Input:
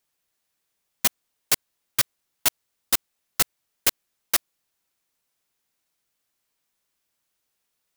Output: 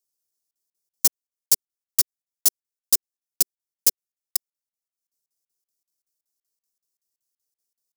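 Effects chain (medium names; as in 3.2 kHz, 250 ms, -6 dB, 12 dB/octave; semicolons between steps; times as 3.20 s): FFT filter 240 Hz 0 dB, 380 Hz +5 dB, 1.1 kHz -6 dB, 2.3 kHz -8 dB, 3.5 kHz -3 dB, 5.2 kHz +11 dB; transient shaper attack +7 dB, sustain -11 dB; crackling interface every 0.19 s, samples 2048, zero, from 0.51 s; trim -13.5 dB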